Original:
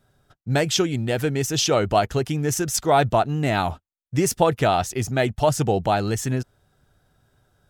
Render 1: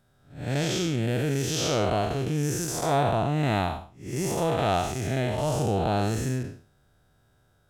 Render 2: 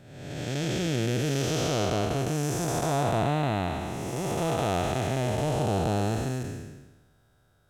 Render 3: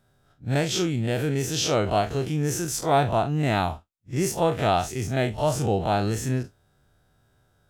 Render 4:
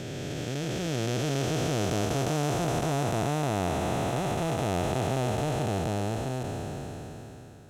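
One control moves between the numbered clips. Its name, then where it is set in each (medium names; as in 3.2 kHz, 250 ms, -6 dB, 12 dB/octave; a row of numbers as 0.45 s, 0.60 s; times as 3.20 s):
spectral blur, width: 224 ms, 587 ms, 88 ms, 1790 ms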